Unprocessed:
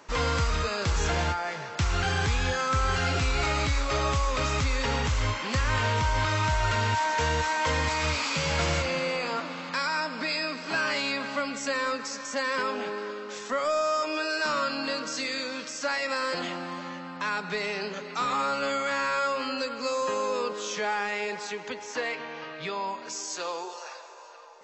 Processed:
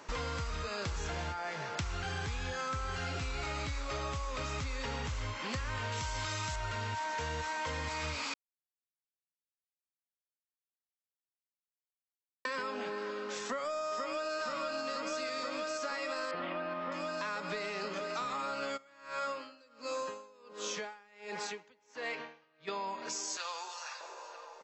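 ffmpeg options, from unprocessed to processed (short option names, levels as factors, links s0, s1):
-filter_complex "[0:a]asettb=1/sr,asplit=3[s0][s1][s2];[s0]atrim=end=5.924[s3];[s1]atrim=start=5.92:end=6.56,asetpts=PTS-STARTPTS,afade=t=in:d=0.004:c=qsin,afade=t=out:st=0.636:d=0.004:c=qsin,aemphasis=mode=production:type=75fm[s4];[s2]atrim=start=6.556[s5];[s3][s4]acrossfade=d=0.004:c1=hsin:c2=qsin[s6];[s6][s5]acrossfade=d=0.004:c1=qsin:c2=hsin,asplit=2[s7][s8];[s8]afade=t=in:st=13.43:d=0.01,afade=t=out:st=14.33:d=0.01,aecho=0:1:480|960|1440|1920|2400|2880|3360|3840|4320|4800|5280|5760:0.944061|0.802452|0.682084|0.579771|0.492806|0.418885|0.356052|0.302644|0.257248|0.21866|0.185861|0.157982[s9];[s7][s9]amix=inputs=2:normalize=0,asettb=1/sr,asplit=3[s10][s11][s12];[s10]atrim=end=16.314[s13];[s11]atrim=start=16.31:end=16.92,asetpts=PTS-STARTPTS,afade=t=in:d=0.004:c=qsin,afade=t=out:st=0.606:d=0.004:c=qsin,lowpass=f=3100:w=0.5412,lowpass=f=3100:w=1.3066[s14];[s12]atrim=start=16.916[s15];[s13][s14]acrossfade=d=0.004:c1=hsin:c2=qsin[s16];[s16][s15]acrossfade=d=0.004:c1=qsin:c2=hsin,asplit=3[s17][s18][s19];[s17]afade=t=out:st=18.76:d=0.02[s20];[s18]aeval=exprs='val(0)*pow(10,-32*(0.5-0.5*cos(2*PI*1.4*n/s))/20)':c=same,afade=t=in:st=18.76:d=0.02,afade=t=out:st=22.67:d=0.02[s21];[s19]afade=t=in:st=22.67:d=0.02[s22];[s20][s21][s22]amix=inputs=3:normalize=0,asettb=1/sr,asplit=3[s23][s24][s25];[s23]atrim=end=23.374[s26];[s24]atrim=start=23.37:end=24.01,asetpts=PTS-STARTPTS,afade=t=in:d=0.004:c=qsin,afade=t=out:st=0.636:d=0.004:c=qsin,highpass=1100[s27];[s25]atrim=start=24.006[s28];[s26][s27]acrossfade=d=0.004:c1=hsin:c2=qsin[s29];[s29][s28]acrossfade=d=0.004:c1=qsin:c2=hsin,asplit=3[s30][s31][s32];[s30]atrim=end=8.34,asetpts=PTS-STARTPTS,afade=t=out:st=8.336:d=0.004:c=hsin[s33];[s31]atrim=start=8.34:end=12.45,asetpts=PTS-STARTPTS,volume=0[s34];[s32]atrim=start=12.45,asetpts=PTS-STARTPTS,afade=t=in:d=0.004:c=hsin[s35];[s33][s34][s35]concat=n=3:v=0:a=1,acompressor=threshold=0.0178:ratio=6"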